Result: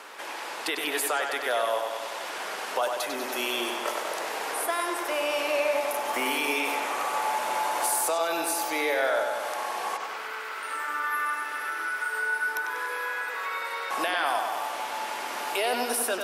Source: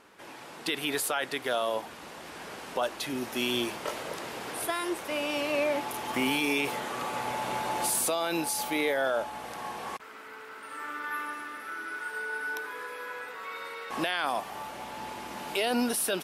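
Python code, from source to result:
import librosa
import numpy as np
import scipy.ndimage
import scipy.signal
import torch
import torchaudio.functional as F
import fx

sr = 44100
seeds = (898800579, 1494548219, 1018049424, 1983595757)

p1 = scipy.signal.sosfilt(scipy.signal.butter(2, 550.0, 'highpass', fs=sr, output='sos'), x)
p2 = p1 + fx.echo_bbd(p1, sr, ms=96, stages=4096, feedback_pct=61, wet_db=-5.5, dry=0)
p3 = fx.dynamic_eq(p2, sr, hz=3500.0, q=0.84, threshold_db=-45.0, ratio=4.0, max_db=-6)
p4 = fx.band_squash(p3, sr, depth_pct=40)
y = F.gain(torch.from_numpy(p4), 5.0).numpy()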